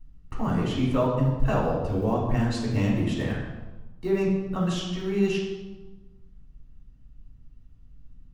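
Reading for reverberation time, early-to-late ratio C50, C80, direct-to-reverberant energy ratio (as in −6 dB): 1.2 s, 2.5 dB, 5.0 dB, −5.5 dB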